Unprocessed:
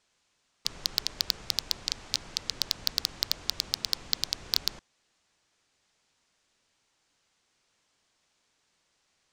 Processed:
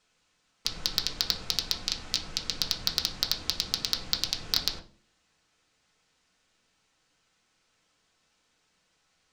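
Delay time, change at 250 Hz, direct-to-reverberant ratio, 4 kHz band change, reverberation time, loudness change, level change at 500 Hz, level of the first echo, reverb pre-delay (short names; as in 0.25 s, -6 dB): none, +4.5 dB, 0.5 dB, +1.5 dB, 0.45 s, +1.5 dB, +2.5 dB, none, 4 ms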